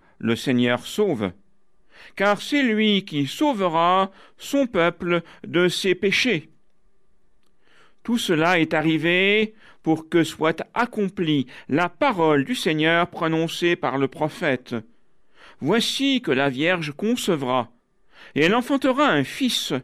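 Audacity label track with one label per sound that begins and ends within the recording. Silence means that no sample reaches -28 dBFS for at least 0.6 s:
2.180000	6.400000	sound
8.080000	14.790000	sound
15.620000	17.630000	sound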